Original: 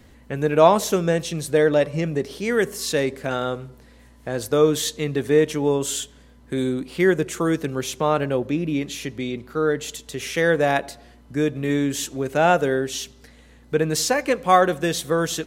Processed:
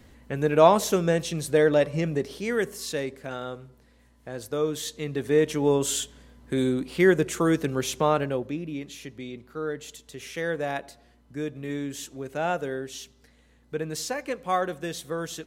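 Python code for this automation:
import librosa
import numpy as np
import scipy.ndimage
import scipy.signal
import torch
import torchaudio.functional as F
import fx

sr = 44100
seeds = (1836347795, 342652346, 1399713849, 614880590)

y = fx.gain(x, sr, db=fx.line((2.12, -2.5), (3.21, -9.5), (4.72, -9.5), (5.74, -1.0), (8.02, -1.0), (8.68, -10.0)))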